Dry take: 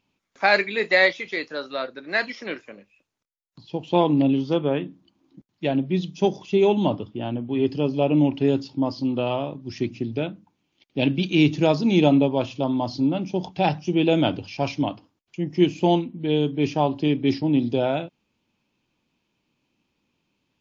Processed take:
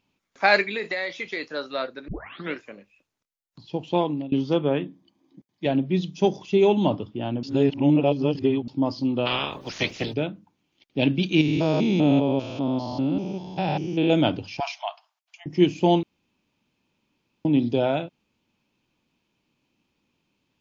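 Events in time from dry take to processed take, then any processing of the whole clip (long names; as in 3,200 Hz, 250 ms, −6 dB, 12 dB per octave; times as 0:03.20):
0:00.76–0:01.46: downward compressor 8 to 1, threshold −24 dBFS
0:02.08: tape start 0.46 s
0:03.80–0:04.32: fade out, to −23 dB
0:04.85–0:05.66: notch comb filter 1,400 Hz
0:07.43–0:08.68: reverse
0:09.25–0:10.12: ceiling on every frequency bin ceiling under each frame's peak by 29 dB
0:11.41–0:14.10: spectrum averaged block by block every 200 ms
0:14.60–0:15.46: linear-phase brick-wall high-pass 610 Hz
0:16.03–0:17.45: fill with room tone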